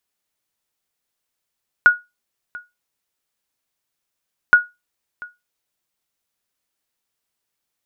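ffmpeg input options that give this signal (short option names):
-f lavfi -i "aevalsrc='0.794*(sin(2*PI*1450*mod(t,2.67))*exp(-6.91*mod(t,2.67)/0.21)+0.0708*sin(2*PI*1450*max(mod(t,2.67)-0.69,0))*exp(-6.91*max(mod(t,2.67)-0.69,0)/0.21))':d=5.34:s=44100"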